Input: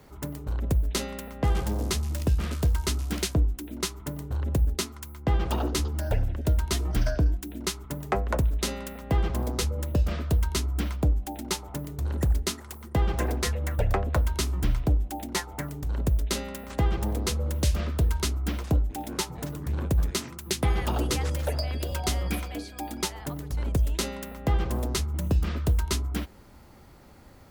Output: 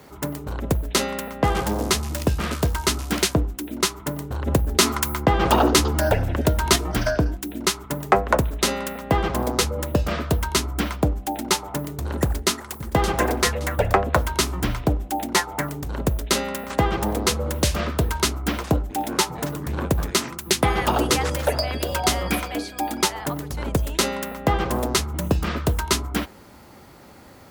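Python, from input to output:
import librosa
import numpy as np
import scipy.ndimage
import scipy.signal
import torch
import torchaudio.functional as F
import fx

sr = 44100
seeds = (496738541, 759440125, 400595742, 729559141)

y = fx.env_flatten(x, sr, amount_pct=50, at=(4.47, 6.76))
y = fx.echo_throw(y, sr, start_s=12.23, length_s=0.63, ms=570, feedback_pct=30, wet_db=-11.0)
y = fx.highpass(y, sr, hz=170.0, slope=6)
y = fx.dynamic_eq(y, sr, hz=1100.0, q=0.7, threshold_db=-45.0, ratio=4.0, max_db=4)
y = y * 10.0 ** (8.0 / 20.0)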